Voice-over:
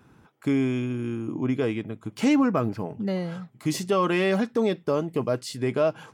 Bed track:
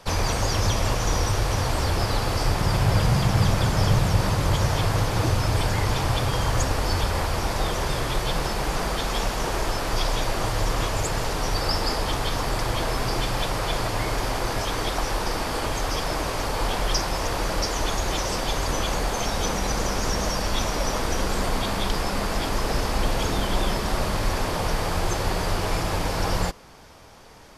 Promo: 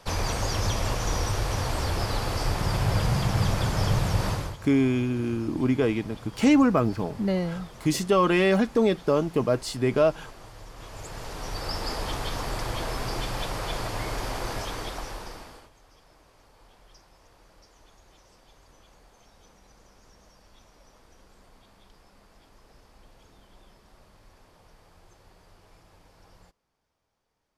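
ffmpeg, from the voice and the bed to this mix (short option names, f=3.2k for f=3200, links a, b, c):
-filter_complex "[0:a]adelay=4200,volume=2dB[a];[1:a]volume=11.5dB,afade=t=out:st=4.3:d=0.26:silence=0.141254,afade=t=in:st=10.74:d=1.29:silence=0.16788,afade=t=out:st=14.52:d=1.18:silence=0.0501187[b];[a][b]amix=inputs=2:normalize=0"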